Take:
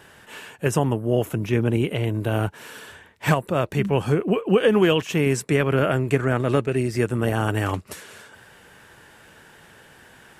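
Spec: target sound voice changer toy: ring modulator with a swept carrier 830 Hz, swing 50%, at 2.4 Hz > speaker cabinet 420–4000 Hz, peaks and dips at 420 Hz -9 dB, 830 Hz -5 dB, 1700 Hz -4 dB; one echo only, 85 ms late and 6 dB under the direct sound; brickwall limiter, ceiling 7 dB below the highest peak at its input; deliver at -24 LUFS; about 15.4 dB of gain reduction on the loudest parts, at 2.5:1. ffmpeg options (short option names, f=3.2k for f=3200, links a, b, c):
-af "acompressor=threshold=-38dB:ratio=2.5,alimiter=level_in=2dB:limit=-24dB:level=0:latency=1,volume=-2dB,aecho=1:1:85:0.501,aeval=exprs='val(0)*sin(2*PI*830*n/s+830*0.5/2.4*sin(2*PI*2.4*n/s))':c=same,highpass=420,equalizer=f=420:t=q:w=4:g=-9,equalizer=f=830:t=q:w=4:g=-5,equalizer=f=1.7k:t=q:w=4:g=-4,lowpass=f=4k:w=0.5412,lowpass=f=4k:w=1.3066,volume=19dB"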